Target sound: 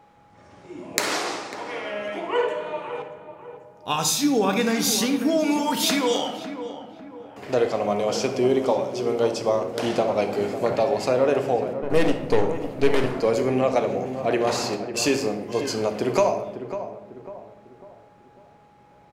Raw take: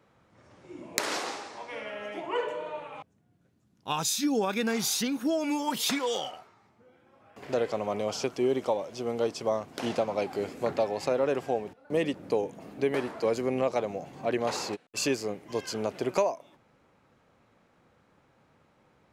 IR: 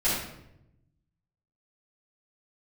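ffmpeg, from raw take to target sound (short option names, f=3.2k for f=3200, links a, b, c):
-filter_complex "[0:a]asplit=2[a][b];[b]adelay=548,lowpass=f=1.3k:p=1,volume=-10dB,asplit=2[c][d];[d]adelay=548,lowpass=f=1.3k:p=1,volume=0.44,asplit=2[e][f];[f]adelay=548,lowpass=f=1.3k:p=1,volume=0.44,asplit=2[g][h];[h]adelay=548,lowpass=f=1.3k:p=1,volume=0.44,asplit=2[i][j];[j]adelay=548,lowpass=f=1.3k:p=1,volume=0.44[k];[a][c][e][g][i][k]amix=inputs=6:normalize=0,asettb=1/sr,asplit=3[l][m][n];[l]atrim=end=11.824[o];[m]atrim=start=11.82:end=13.17,asetpts=PTS-STARTPTS,afade=t=in:d=0.004:c=qsin,afade=t=out:st=1.346:d=0.004:c=qsin,aeval=exprs='0.188*(cos(1*acos(clip(val(0)/0.188,-1,1)))-cos(1*PI/2))+0.0211*(cos(8*acos(clip(val(0)/0.188,-1,1)))-cos(8*PI/2))':c=same[p];[n]atrim=start=13.166[q];[o][p]acrossfade=d=0.004:c1=hsin:c2=qsin[r];[r][q]acrossfade=d=0.004:c1=qsin:c2=hsin,aeval=exprs='val(0)+0.00158*sin(2*PI*830*n/s)':c=same,asplit=2[s][t];[1:a]atrim=start_sample=2205[u];[t][u]afir=irnorm=-1:irlink=0,volume=-16.5dB[v];[s][v]amix=inputs=2:normalize=0,volume=4.5dB"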